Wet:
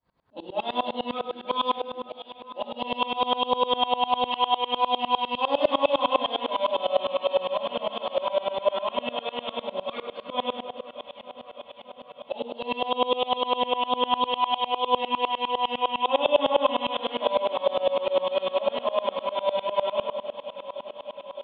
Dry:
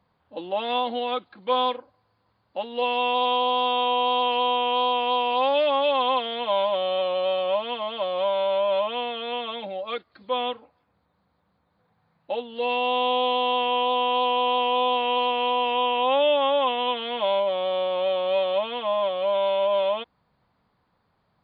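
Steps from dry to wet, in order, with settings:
0:14.25–0:14.85: high-pass filter 550 Hz 6 dB per octave
delay that swaps between a low-pass and a high-pass 307 ms, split 1,800 Hz, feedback 88%, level −12.5 dB
convolution reverb RT60 1.1 s, pre-delay 3 ms, DRR −3 dB
tremolo with a ramp in dB swelling 9.9 Hz, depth 24 dB

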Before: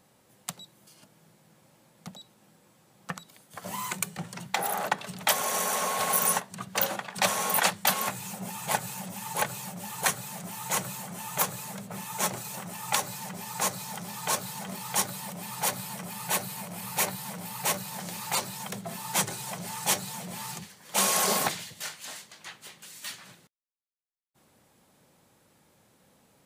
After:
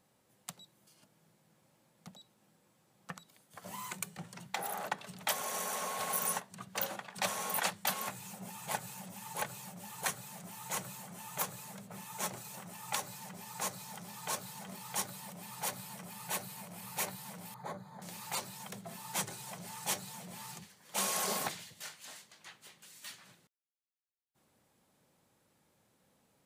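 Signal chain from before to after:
0:17.54–0:18.02: moving average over 16 samples
level −9 dB

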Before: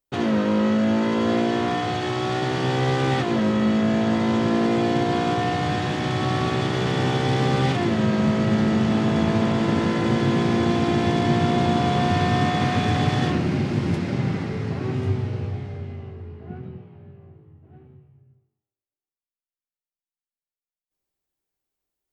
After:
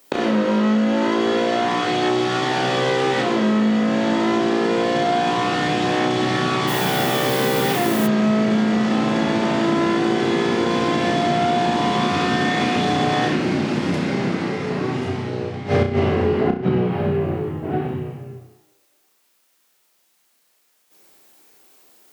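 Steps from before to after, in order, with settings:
high-pass filter 230 Hz 12 dB per octave
gate with flip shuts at −30 dBFS, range −24 dB
on a send: flutter between parallel walls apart 5.6 metres, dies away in 0.36 s
on the sum: downward compressor 3 to 1, threshold −47 dBFS, peak gain reduction 9 dB
0:06.67–0:08.06: background noise blue −62 dBFS
boost into a limiter +36 dB
level −5.5 dB

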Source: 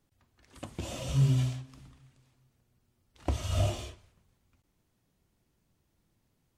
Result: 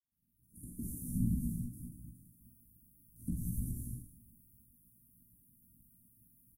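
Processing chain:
fade in at the beginning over 1.47 s
parametric band 8,000 Hz −10.5 dB 0.67 octaves
four-comb reverb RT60 0.47 s, combs from 30 ms, DRR 0.5 dB
random phases in short frames
tilt shelving filter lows −9 dB, about 670 Hz
downward compressor 6 to 1, threshold −39 dBFS, peak gain reduction 13.5 dB
Chebyshev band-stop filter 260–9,500 Hz, order 4
double-tracking delay 17 ms −4.5 dB
every ending faded ahead of time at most 140 dB per second
level +10 dB

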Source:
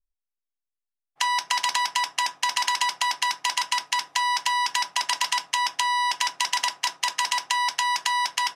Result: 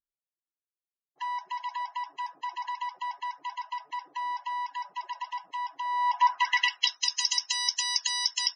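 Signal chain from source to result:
spectral peaks only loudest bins 64
band-pass filter sweep 360 Hz → 5,800 Hz, 0:05.83–0:07.07
level +8 dB

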